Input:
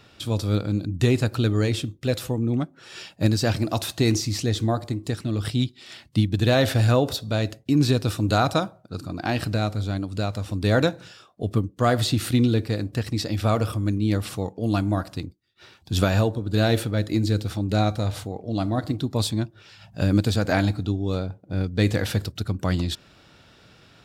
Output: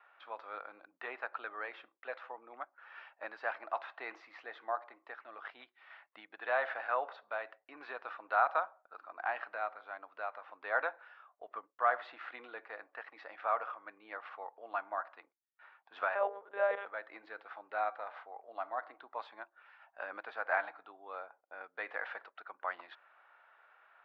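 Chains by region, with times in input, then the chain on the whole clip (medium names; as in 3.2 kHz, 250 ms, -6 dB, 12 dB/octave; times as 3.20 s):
16.15–16.86 s: peaking EQ 500 Hz +13.5 dB 0.68 oct + hum notches 50/100/150/200/250/300/350/400/450 Hz + monotone LPC vocoder at 8 kHz 200 Hz
whole clip: high-pass 790 Hz 24 dB/octave; gate with hold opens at -49 dBFS; low-pass 1.8 kHz 24 dB/octave; trim -3 dB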